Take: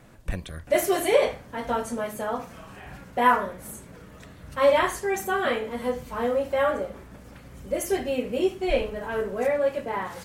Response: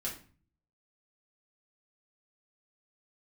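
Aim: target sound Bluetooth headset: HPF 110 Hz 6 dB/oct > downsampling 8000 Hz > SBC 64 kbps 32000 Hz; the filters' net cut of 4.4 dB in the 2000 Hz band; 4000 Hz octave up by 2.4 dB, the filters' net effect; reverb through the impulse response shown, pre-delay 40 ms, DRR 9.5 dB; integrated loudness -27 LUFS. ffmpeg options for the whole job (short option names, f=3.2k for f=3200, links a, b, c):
-filter_complex "[0:a]equalizer=f=2k:t=o:g=-7,equalizer=f=4k:t=o:g=6.5,asplit=2[a][b];[1:a]atrim=start_sample=2205,adelay=40[c];[b][c]afir=irnorm=-1:irlink=0,volume=-11dB[d];[a][d]amix=inputs=2:normalize=0,highpass=f=110:p=1,aresample=8000,aresample=44100,volume=-1dB" -ar 32000 -c:a sbc -b:a 64k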